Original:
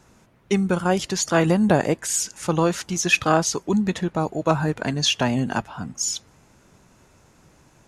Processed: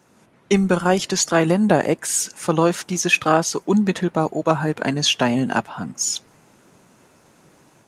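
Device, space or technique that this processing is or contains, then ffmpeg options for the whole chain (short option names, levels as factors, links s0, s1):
video call: -af "highpass=160,dynaudnorm=f=120:g=3:m=1.78" -ar 48000 -c:a libopus -b:a 32k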